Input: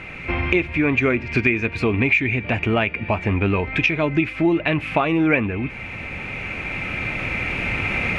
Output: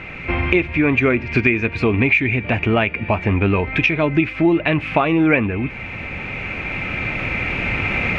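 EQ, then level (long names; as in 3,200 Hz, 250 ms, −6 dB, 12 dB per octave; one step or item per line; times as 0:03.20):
high-frequency loss of the air 78 metres
+3.0 dB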